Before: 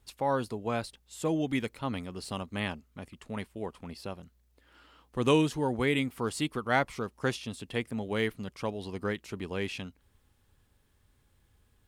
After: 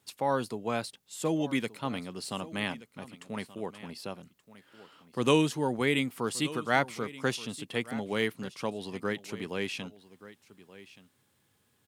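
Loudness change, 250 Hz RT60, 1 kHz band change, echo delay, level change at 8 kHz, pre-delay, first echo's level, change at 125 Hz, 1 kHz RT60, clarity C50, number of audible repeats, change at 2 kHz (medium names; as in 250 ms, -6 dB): +0.5 dB, no reverb, +0.5 dB, 1177 ms, +3.5 dB, no reverb, -17.5 dB, -2.0 dB, no reverb, no reverb, 1, +1.5 dB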